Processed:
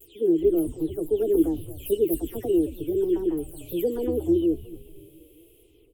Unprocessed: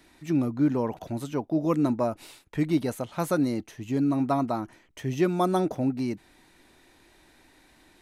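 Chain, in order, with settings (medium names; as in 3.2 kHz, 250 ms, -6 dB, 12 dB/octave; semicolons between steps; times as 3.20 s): delay that grows with frequency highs early, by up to 415 ms; peaking EQ 93 Hz +7 dB 2.3 oct; frequency-shifting echo 304 ms, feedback 50%, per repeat -120 Hz, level -13.5 dB; vibrato 0.31 Hz 21 cents; speed mistake 33 rpm record played at 45 rpm; FFT filter 110 Hz 0 dB, 200 Hz -20 dB, 340 Hz +7 dB, 1 kHz -27 dB, 1.7 kHz -28 dB, 3 kHz -2 dB, 5.2 kHz -23 dB, 9.9 kHz +7 dB; trim +2 dB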